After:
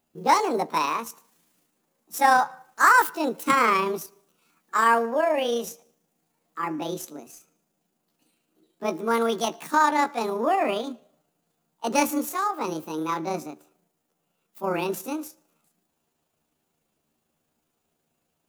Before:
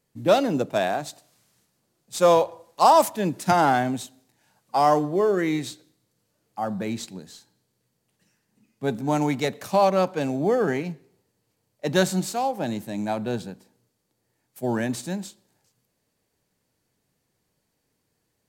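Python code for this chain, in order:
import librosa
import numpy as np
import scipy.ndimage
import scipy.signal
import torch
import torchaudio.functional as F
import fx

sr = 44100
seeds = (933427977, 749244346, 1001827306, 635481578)

y = fx.pitch_heads(x, sr, semitones=7.5)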